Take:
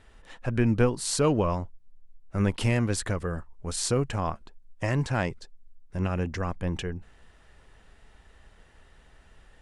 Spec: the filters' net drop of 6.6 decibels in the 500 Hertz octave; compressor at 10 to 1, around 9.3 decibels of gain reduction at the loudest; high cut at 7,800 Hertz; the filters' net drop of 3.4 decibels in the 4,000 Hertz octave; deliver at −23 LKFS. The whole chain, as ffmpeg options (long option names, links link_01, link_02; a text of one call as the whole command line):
ffmpeg -i in.wav -af "lowpass=7800,equalizer=frequency=500:width_type=o:gain=-8,equalizer=frequency=4000:width_type=o:gain=-4,acompressor=threshold=-28dB:ratio=10,volume=12.5dB" out.wav